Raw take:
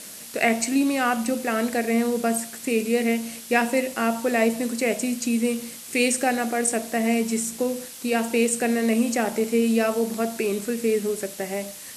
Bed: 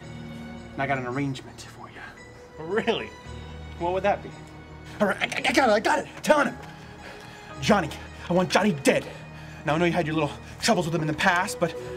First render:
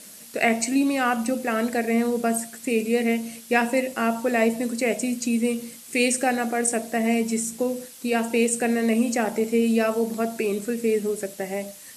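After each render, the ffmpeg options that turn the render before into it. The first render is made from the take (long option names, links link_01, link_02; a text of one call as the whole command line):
ffmpeg -i in.wav -af "afftdn=noise_reduction=6:noise_floor=-40" out.wav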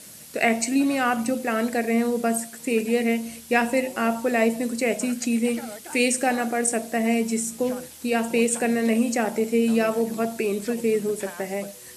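ffmpeg -i in.wav -i bed.wav -filter_complex "[1:a]volume=-19dB[link_01];[0:a][link_01]amix=inputs=2:normalize=0" out.wav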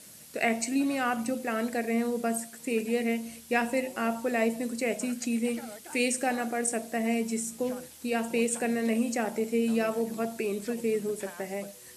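ffmpeg -i in.wav -af "volume=-6dB" out.wav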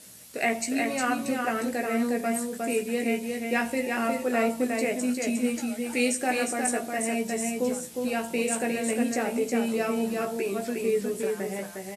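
ffmpeg -i in.wav -filter_complex "[0:a]asplit=2[link_01][link_02];[link_02]adelay=16,volume=-5dB[link_03];[link_01][link_03]amix=inputs=2:normalize=0,asplit=2[link_04][link_05];[link_05]aecho=0:1:358:0.631[link_06];[link_04][link_06]amix=inputs=2:normalize=0" out.wav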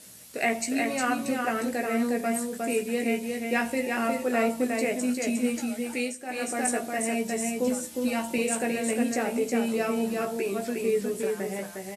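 ffmpeg -i in.wav -filter_complex "[0:a]asettb=1/sr,asplit=3[link_01][link_02][link_03];[link_01]atrim=end=7.674[link_04];[link_02]atrim=start=7.67:end=8.38,asetpts=PTS-STARTPTS,afade=type=in:duration=0.004:curve=qsin,afade=type=out:start_time=0.706:duration=0.004:curve=qsin,aecho=1:1:3.4:0.65,atrim=end_sample=31311[link_05];[link_03]atrim=start=8.376[link_06];[link_04][link_05]acrossfade=duration=0.004:curve1=hsin:curve2=qsin[link_07];[link_07][link_06]acrossfade=duration=0.004:curve1=qsin:curve2=hsin,asplit=3[link_08][link_09][link_10];[link_08]atrim=end=6.16,asetpts=PTS-STARTPTS,afade=type=out:start_time=5.83:duration=0.33:silence=0.266073[link_11];[link_09]atrim=start=6.16:end=6.25,asetpts=PTS-STARTPTS,volume=-11.5dB[link_12];[link_10]atrim=start=6.25,asetpts=PTS-STARTPTS,afade=type=in:duration=0.33:silence=0.266073[link_13];[link_11][link_12][link_13]concat=n=3:v=0:a=1" out.wav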